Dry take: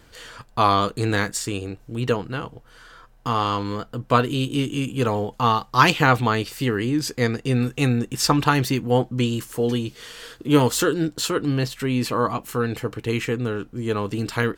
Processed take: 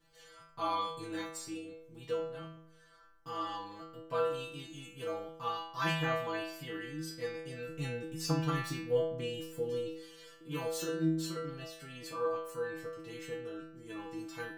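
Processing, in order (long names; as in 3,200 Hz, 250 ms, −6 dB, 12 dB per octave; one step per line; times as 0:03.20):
0:07.68–0:09.97: low-shelf EQ 460 Hz +8 dB
stiff-string resonator 160 Hz, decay 0.79 s, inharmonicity 0.002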